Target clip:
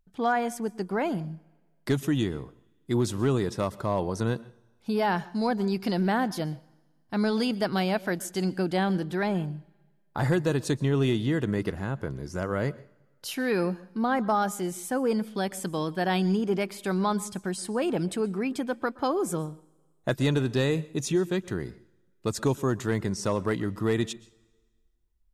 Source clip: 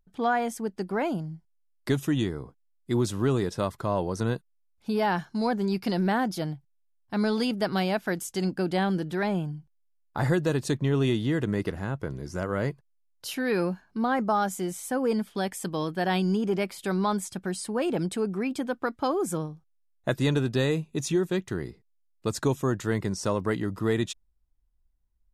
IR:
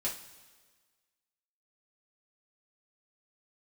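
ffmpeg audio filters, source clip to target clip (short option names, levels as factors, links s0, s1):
-filter_complex "[0:a]volume=6.31,asoftclip=hard,volume=0.158,asplit=2[s0][s1];[1:a]atrim=start_sample=2205,adelay=120[s2];[s1][s2]afir=irnorm=-1:irlink=0,volume=0.0708[s3];[s0][s3]amix=inputs=2:normalize=0"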